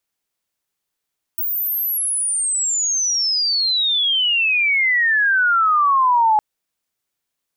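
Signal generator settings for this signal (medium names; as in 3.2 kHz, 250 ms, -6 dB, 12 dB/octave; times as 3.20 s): sweep logarithmic 16 kHz -> 840 Hz -19 dBFS -> -11.5 dBFS 5.01 s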